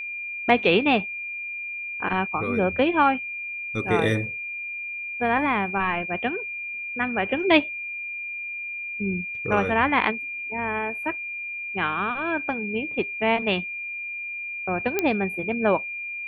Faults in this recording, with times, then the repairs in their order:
whine 2.4 kHz -30 dBFS
14.99 s: pop -8 dBFS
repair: de-click; band-stop 2.4 kHz, Q 30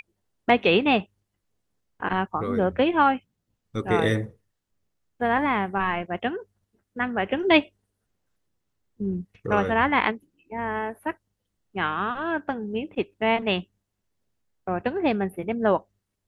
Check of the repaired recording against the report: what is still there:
nothing left

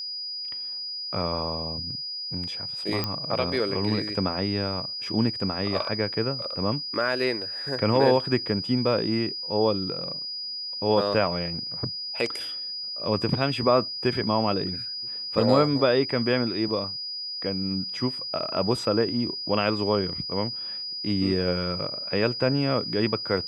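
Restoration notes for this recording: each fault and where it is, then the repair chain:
whine 4.9 kHz -31 dBFS
3.04 s: pop -12 dBFS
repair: de-click; band-stop 4.9 kHz, Q 30

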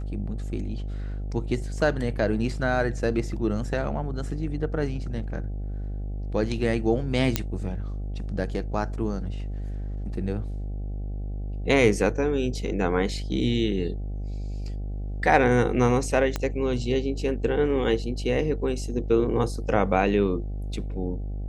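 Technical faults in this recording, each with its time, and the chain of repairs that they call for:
buzz 50 Hz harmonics 16 -31 dBFS
7.36 s: pop -6 dBFS
16.36 s: pop -12 dBFS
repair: de-click; de-hum 50 Hz, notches 16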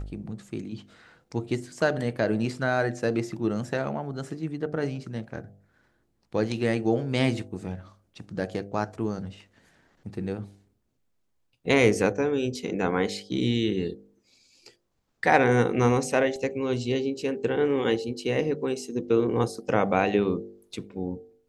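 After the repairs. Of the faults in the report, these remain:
16.36 s: pop

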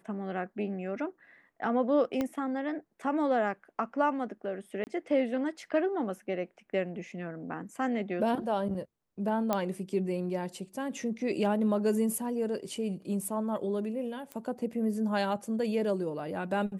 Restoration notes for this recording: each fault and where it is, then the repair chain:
2.21 s: pop -18 dBFS
4.84–4.87 s: dropout 29 ms
9.53 s: pop -14 dBFS
14.32 s: pop -24 dBFS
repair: de-click; interpolate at 4.84 s, 29 ms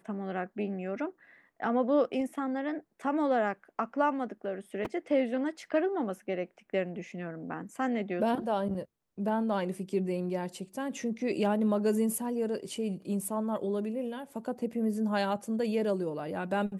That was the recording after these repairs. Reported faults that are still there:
2.21 s: pop

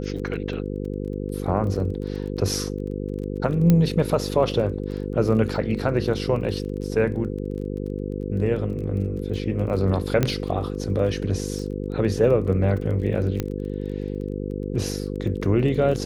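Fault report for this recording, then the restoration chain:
buzz 50 Hz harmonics 10 -29 dBFS
crackle 24 per s -33 dBFS
3.70 s: pop -7 dBFS
10.23 s: pop -7 dBFS
13.40 s: pop -11 dBFS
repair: de-click; de-hum 50 Hz, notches 10

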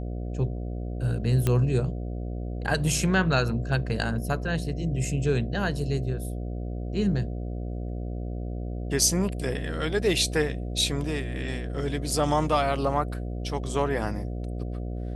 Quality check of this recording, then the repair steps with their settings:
buzz 60 Hz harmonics 12 -32 dBFS
1.47 s: pop -11 dBFS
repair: de-click; de-hum 60 Hz, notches 12

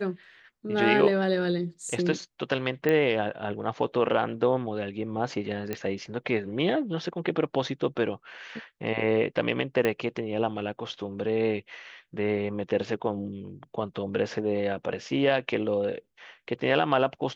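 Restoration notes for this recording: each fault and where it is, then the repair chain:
2.89 s: pop -13 dBFS
5.73 s: pop -16 dBFS
9.85 s: pop -13 dBFS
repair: de-click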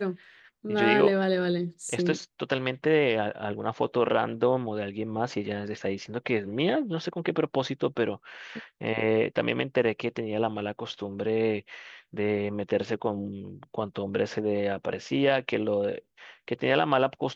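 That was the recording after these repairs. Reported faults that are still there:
nothing left

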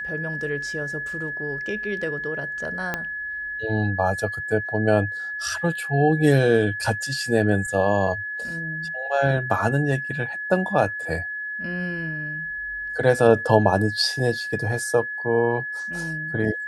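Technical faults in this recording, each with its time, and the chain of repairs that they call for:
whine 1.7 kHz -28 dBFS
2.94 s: pop -11 dBFS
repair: de-click; band-stop 1.7 kHz, Q 30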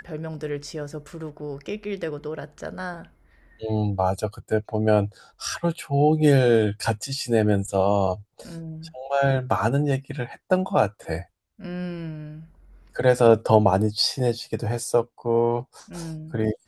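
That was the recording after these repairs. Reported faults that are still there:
2.94 s: pop

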